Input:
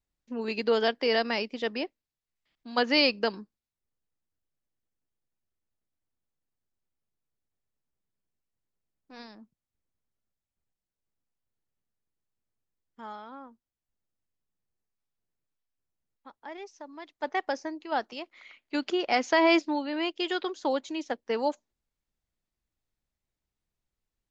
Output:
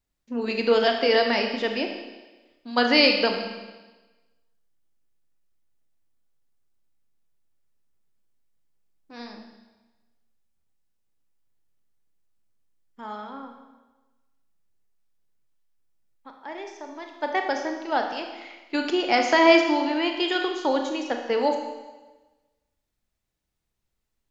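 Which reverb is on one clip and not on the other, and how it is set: Schroeder reverb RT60 1.2 s, combs from 26 ms, DRR 3.5 dB; gain +4 dB

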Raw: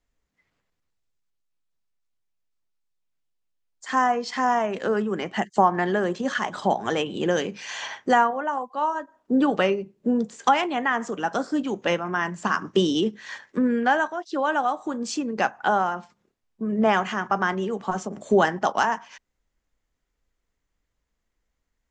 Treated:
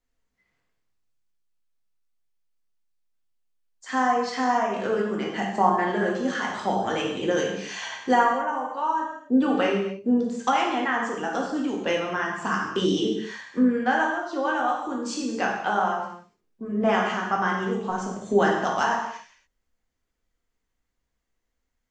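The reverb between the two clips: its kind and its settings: non-linear reverb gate 0.31 s falling, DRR -2 dB; gain -5 dB

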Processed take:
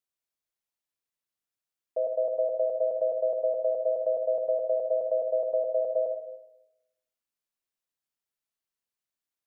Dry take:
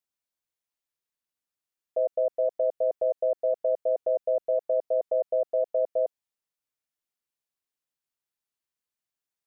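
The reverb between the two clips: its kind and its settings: digital reverb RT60 0.96 s, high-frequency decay 0.85×, pre-delay 20 ms, DRR 5.5 dB; gain -2.5 dB

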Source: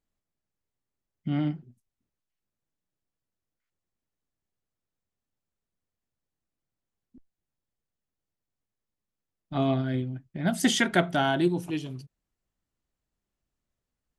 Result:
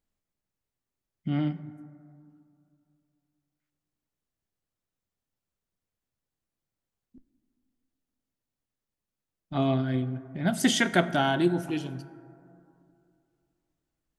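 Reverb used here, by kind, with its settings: plate-style reverb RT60 2.6 s, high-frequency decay 0.3×, DRR 13.5 dB

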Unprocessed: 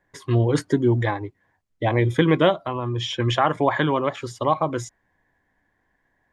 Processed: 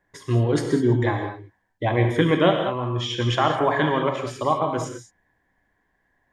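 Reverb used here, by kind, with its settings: non-linear reverb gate 0.23 s flat, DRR 3.5 dB; gain -1.5 dB

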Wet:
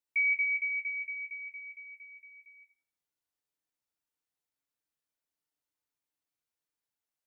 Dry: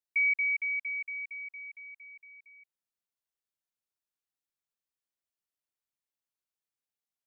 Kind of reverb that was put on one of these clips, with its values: FDN reverb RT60 0.72 s, low-frequency decay 1.05×, high-frequency decay 0.4×, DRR 1 dB; gain -1 dB

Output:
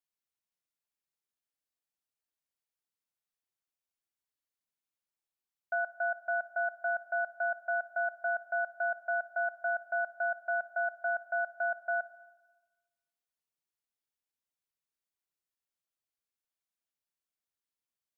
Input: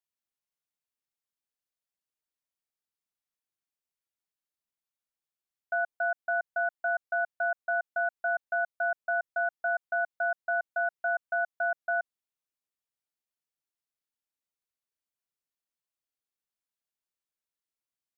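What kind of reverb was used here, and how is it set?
Schroeder reverb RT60 1.2 s, combs from 28 ms, DRR 14 dB; gain -2.5 dB

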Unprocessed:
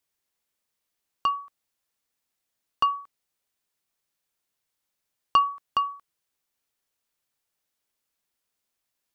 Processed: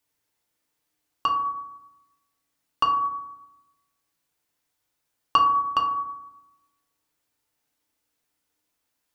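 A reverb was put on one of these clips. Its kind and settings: FDN reverb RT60 0.93 s, low-frequency decay 1.35×, high-frequency decay 0.35×, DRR -0.5 dB; gain +1.5 dB

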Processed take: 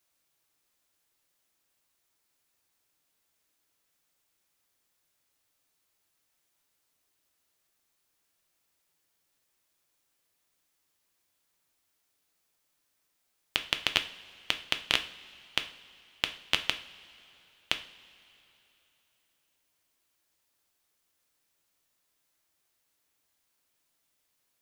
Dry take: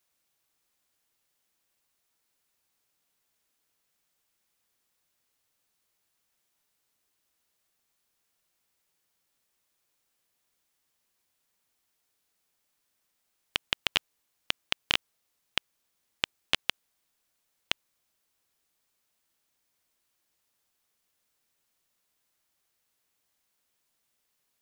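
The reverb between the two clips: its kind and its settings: two-slope reverb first 0.42 s, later 3.2 s, from -18 dB, DRR 7 dB

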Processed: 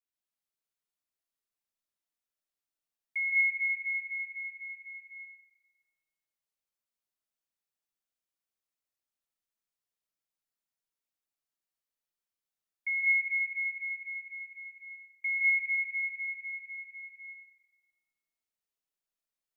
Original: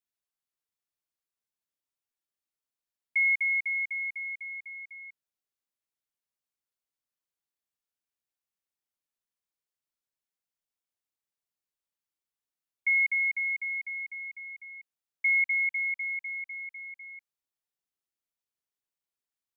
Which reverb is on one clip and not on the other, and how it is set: digital reverb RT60 1.2 s, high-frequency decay 1×, pre-delay 0.1 s, DRR -4 dB; gain -7 dB

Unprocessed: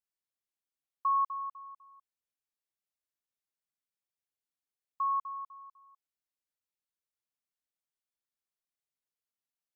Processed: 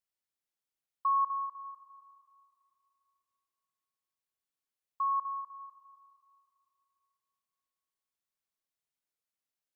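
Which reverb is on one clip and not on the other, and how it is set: digital reverb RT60 3 s, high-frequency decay 0.8×, pre-delay 95 ms, DRR 14 dB

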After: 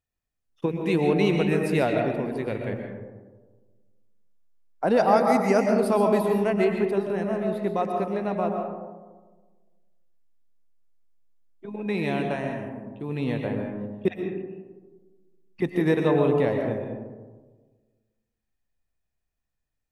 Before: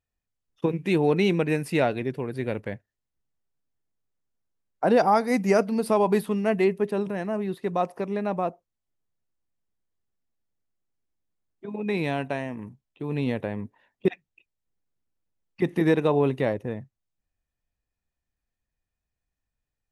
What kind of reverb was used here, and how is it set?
digital reverb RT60 1.4 s, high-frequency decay 0.3×, pre-delay 85 ms, DRR 2.5 dB; gain -1.5 dB

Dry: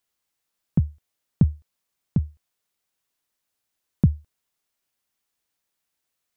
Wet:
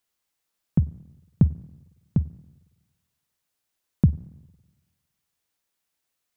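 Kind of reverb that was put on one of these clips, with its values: spring tank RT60 1.2 s, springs 46/50/56 ms, DRR 18.5 dB

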